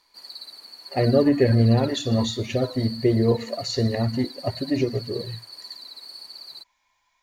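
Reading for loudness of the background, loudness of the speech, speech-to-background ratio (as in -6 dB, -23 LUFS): -38.5 LUFS, -23.0 LUFS, 15.5 dB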